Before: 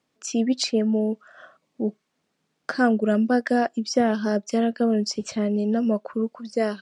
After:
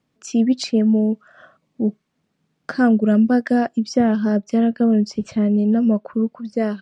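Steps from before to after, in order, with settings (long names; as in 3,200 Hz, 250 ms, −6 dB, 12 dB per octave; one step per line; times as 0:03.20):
bass and treble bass +11 dB, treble −3 dB, from 0:03.95 treble −9 dB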